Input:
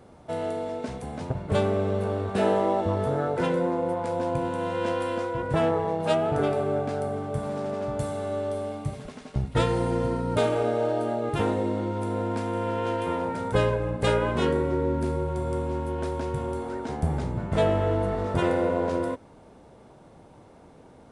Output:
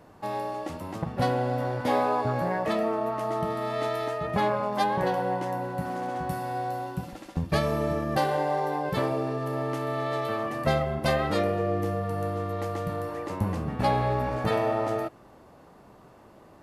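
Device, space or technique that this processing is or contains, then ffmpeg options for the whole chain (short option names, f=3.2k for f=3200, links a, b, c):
nightcore: -af "asetrate=56007,aresample=44100,volume=-1.5dB"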